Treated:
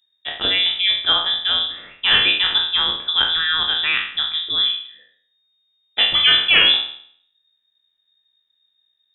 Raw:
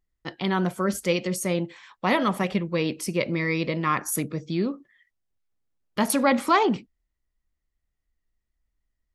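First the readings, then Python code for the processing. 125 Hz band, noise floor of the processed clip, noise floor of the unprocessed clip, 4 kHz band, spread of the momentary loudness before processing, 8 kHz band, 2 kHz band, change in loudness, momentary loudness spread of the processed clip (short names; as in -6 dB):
under -10 dB, -70 dBFS, -80 dBFS, +24.0 dB, 9 LU, under -40 dB, +10.5 dB, +9.5 dB, 10 LU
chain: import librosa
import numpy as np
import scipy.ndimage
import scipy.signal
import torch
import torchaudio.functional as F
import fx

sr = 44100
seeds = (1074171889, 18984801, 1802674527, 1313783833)

y = fx.spec_trails(x, sr, decay_s=0.57)
y = fx.notch(y, sr, hz=1100.0, q=8.1)
y = fx.freq_invert(y, sr, carrier_hz=3700)
y = y * librosa.db_to_amplitude(5.0)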